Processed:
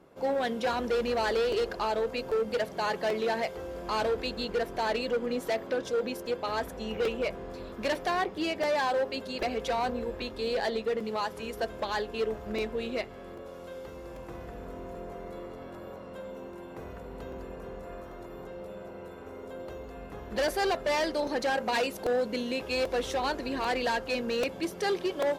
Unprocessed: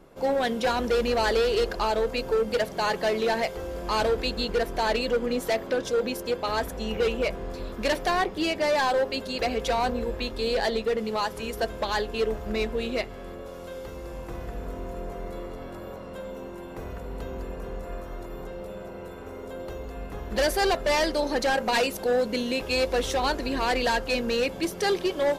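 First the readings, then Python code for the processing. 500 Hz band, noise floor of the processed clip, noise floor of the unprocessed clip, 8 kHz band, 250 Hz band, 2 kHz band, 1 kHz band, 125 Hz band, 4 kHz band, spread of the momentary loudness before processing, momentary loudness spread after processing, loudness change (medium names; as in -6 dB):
-4.0 dB, -44 dBFS, -39 dBFS, -7.0 dB, -4.5 dB, -4.5 dB, -4.0 dB, -7.0 dB, -6.0 dB, 15 LU, 15 LU, -4.0 dB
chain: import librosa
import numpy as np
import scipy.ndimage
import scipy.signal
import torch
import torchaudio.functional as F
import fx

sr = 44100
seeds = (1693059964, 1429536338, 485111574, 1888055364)

y = scipy.signal.sosfilt(scipy.signal.butter(2, 52.0, 'highpass', fs=sr, output='sos'), x)
y = fx.high_shelf(y, sr, hz=4000.0, db=-5.0)
y = np.clip(10.0 ** (19.5 / 20.0) * y, -1.0, 1.0) / 10.0 ** (19.5 / 20.0)
y = fx.low_shelf(y, sr, hz=110.0, db=-4.5)
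y = fx.buffer_crackle(y, sr, first_s=0.73, period_s=0.79, block=128, kind='repeat')
y = F.gain(torch.from_numpy(y), -3.5).numpy()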